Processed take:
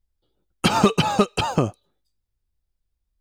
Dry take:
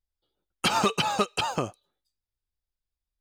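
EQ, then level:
low-shelf EQ 460 Hz +11 dB
+2.0 dB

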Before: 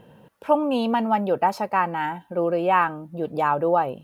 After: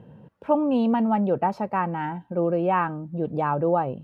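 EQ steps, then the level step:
high-pass filter 96 Hz
RIAA equalisation playback
−4.0 dB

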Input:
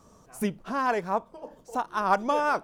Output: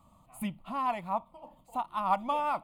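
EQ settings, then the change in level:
phaser with its sweep stopped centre 1,600 Hz, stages 6
−2.5 dB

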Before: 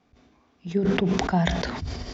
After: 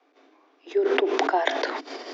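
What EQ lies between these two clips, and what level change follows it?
Butterworth high-pass 280 Hz 96 dB per octave
high-frequency loss of the air 79 metres
high-shelf EQ 4,400 Hz −5 dB
+5.0 dB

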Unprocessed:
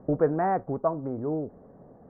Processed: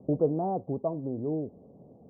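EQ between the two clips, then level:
high-pass filter 75 Hz
Bessel low-pass filter 530 Hz, order 8
0.0 dB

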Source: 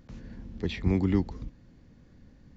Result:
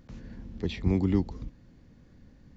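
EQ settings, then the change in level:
dynamic equaliser 1,700 Hz, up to −5 dB, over −52 dBFS, Q 1.3
0.0 dB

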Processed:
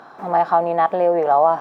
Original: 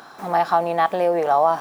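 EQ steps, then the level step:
high-pass filter 49 Hz
low-pass filter 1,500 Hz 6 dB per octave
parametric band 680 Hz +3.5 dB 2.2 octaves
0.0 dB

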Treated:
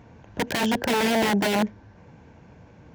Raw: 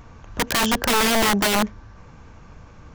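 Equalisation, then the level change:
high-pass filter 110 Hz 12 dB per octave
parametric band 1,200 Hz −14.5 dB 0.31 octaves
high-shelf EQ 3,300 Hz −12 dB
0.0 dB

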